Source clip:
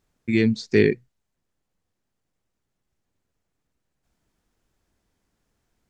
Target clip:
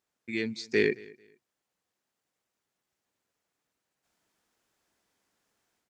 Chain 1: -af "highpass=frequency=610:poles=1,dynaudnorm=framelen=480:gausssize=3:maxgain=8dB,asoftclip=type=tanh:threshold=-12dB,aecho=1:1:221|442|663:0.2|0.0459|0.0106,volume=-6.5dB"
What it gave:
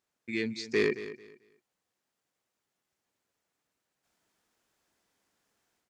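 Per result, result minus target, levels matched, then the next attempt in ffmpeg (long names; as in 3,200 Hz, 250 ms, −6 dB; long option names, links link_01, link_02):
soft clipping: distortion +14 dB; echo-to-direct +9 dB
-af "highpass=frequency=610:poles=1,dynaudnorm=framelen=480:gausssize=3:maxgain=8dB,asoftclip=type=tanh:threshold=-3dB,aecho=1:1:221|442|663:0.2|0.0459|0.0106,volume=-6.5dB"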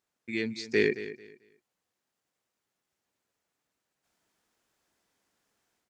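echo-to-direct +9 dB
-af "highpass=frequency=610:poles=1,dynaudnorm=framelen=480:gausssize=3:maxgain=8dB,asoftclip=type=tanh:threshold=-3dB,aecho=1:1:221|442:0.0708|0.0163,volume=-6.5dB"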